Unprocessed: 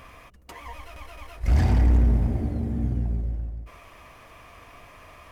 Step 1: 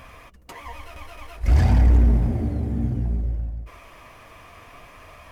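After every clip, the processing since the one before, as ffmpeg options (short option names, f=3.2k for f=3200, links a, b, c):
-af "flanger=delay=1.2:depth=9.6:regen=-58:speed=0.57:shape=sinusoidal,volume=6.5dB"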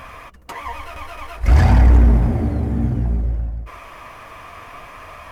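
-af "equalizer=f=1.2k:w=0.81:g=6,volume=4.5dB"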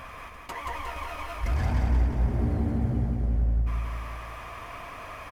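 -af "alimiter=limit=-15.5dB:level=0:latency=1:release=123,aecho=1:1:179|358|537|716|895|1074|1253|1432:0.668|0.381|0.217|0.124|0.0706|0.0402|0.0229|0.0131,volume=-5dB"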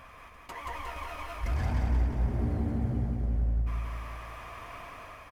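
-af "dynaudnorm=f=200:g=5:m=5dB,volume=-8.5dB"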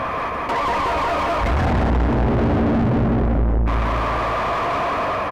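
-filter_complex "[0:a]tiltshelf=f=890:g=7,asplit=2[a][b];[b]highpass=f=720:p=1,volume=42dB,asoftclip=type=tanh:threshold=-11dB[c];[a][c]amix=inputs=2:normalize=0,lowpass=f=1.3k:p=1,volume=-6dB"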